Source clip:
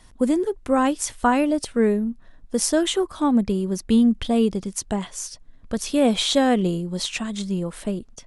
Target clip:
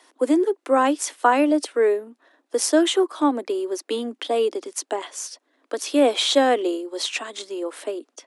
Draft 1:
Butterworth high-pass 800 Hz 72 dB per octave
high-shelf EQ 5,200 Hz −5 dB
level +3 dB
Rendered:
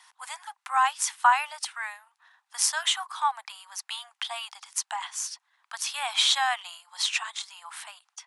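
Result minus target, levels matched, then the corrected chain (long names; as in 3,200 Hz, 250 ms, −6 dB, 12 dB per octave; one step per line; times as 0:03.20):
1,000 Hz band +3.0 dB
Butterworth high-pass 280 Hz 72 dB per octave
high-shelf EQ 5,200 Hz −5 dB
level +3 dB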